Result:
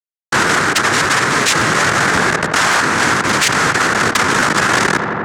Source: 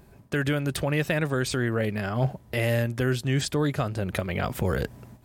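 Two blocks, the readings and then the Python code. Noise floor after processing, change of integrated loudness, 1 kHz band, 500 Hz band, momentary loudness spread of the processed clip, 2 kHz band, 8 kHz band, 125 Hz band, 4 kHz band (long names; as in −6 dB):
below −85 dBFS, +14.0 dB, +21.5 dB, +7.5 dB, 1 LU, +20.0 dB, +21.5 dB, +1.0 dB, +18.5 dB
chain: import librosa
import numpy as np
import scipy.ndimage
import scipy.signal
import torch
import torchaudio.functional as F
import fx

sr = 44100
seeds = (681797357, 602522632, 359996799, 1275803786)

y = fx.echo_feedback(x, sr, ms=196, feedback_pct=45, wet_db=-13)
y = fx.schmitt(y, sr, flips_db=-31.0)
y = scipy.signal.sosfilt(scipy.signal.butter(2, 250.0, 'highpass', fs=sr, output='sos'), y)
y = fx.high_shelf(y, sr, hz=2400.0, db=11.0)
y = fx.noise_vocoder(y, sr, seeds[0], bands=3)
y = fx.peak_eq(y, sr, hz=1500.0, db=9.0, octaves=1.3)
y = fx.rider(y, sr, range_db=10, speed_s=0.5)
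y = fx.echo_filtered(y, sr, ms=87, feedback_pct=81, hz=2800.0, wet_db=-19.0)
y = fx.fold_sine(y, sr, drive_db=4, ceiling_db=-6.5)
y = fx.buffer_crackle(y, sr, first_s=0.47, period_s=0.56, block=512, kind='repeat')
y = fx.env_flatten(y, sr, amount_pct=70)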